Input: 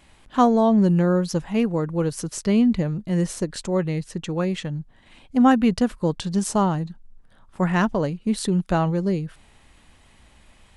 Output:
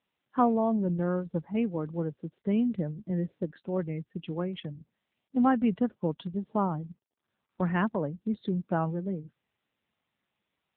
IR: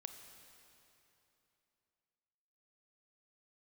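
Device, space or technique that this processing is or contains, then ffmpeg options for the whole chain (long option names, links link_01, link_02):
mobile call with aggressive noise cancelling: -af "highpass=frequency=130:width=0.5412,highpass=frequency=130:width=1.3066,afftdn=noise_reduction=21:noise_floor=-35,volume=-6.5dB" -ar 8000 -c:a libopencore_amrnb -b:a 7950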